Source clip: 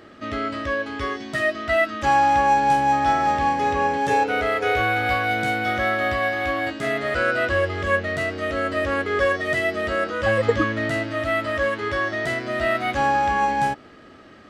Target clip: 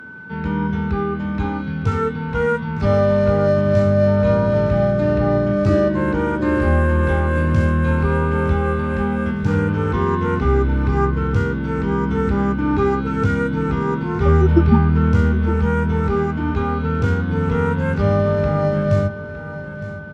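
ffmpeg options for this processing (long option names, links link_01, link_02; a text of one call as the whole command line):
ffmpeg -i in.wav -filter_complex "[0:a]highpass=frequency=110:width=0.5412,highpass=frequency=110:width=1.3066,lowshelf=frequency=480:gain=9.5,acrossover=split=220|2200[link_01][link_02][link_03];[link_01]dynaudnorm=framelen=230:gausssize=3:maxgain=14dB[link_04];[link_04][link_02][link_03]amix=inputs=3:normalize=0,aeval=exprs='val(0)+0.0251*sin(2*PI*2100*n/s)':channel_layout=same,asetrate=31752,aresample=44100,asplit=2[link_05][link_06];[link_06]aecho=0:1:911|1822|2733|3644:0.2|0.0838|0.0352|0.0148[link_07];[link_05][link_07]amix=inputs=2:normalize=0,volume=-3dB" out.wav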